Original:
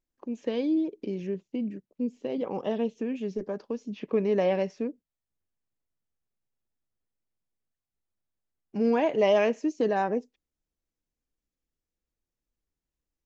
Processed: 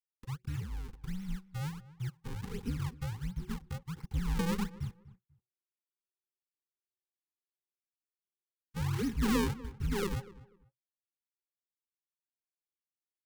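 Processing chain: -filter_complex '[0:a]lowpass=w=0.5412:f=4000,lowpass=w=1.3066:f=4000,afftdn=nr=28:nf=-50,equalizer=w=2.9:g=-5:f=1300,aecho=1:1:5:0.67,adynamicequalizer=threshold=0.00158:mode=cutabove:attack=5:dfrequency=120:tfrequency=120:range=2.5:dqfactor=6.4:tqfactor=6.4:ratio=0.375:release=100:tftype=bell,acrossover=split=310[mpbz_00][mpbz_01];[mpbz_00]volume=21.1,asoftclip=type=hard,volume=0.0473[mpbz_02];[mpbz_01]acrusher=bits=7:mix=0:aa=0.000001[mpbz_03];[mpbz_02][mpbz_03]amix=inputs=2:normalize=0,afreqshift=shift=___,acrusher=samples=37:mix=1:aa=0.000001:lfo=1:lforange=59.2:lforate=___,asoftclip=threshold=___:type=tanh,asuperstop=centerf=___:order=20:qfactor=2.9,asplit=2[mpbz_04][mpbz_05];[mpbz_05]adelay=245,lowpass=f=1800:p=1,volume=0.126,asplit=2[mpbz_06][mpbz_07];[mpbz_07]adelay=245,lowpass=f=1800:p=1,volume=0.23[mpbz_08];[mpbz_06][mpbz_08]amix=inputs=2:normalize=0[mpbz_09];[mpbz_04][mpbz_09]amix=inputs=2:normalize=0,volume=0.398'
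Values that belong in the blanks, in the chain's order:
-370, 1.4, 0.188, 640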